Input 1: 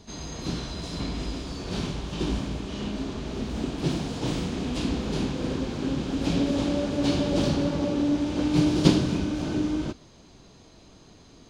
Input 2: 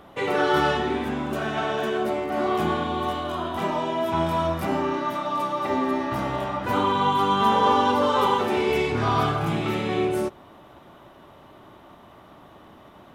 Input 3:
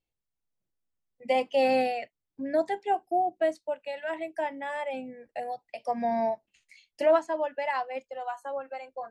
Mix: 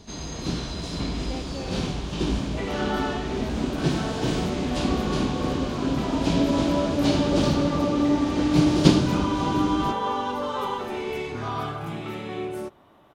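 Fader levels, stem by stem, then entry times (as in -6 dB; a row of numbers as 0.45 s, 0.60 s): +2.5 dB, -7.5 dB, -15.5 dB; 0.00 s, 2.40 s, 0.00 s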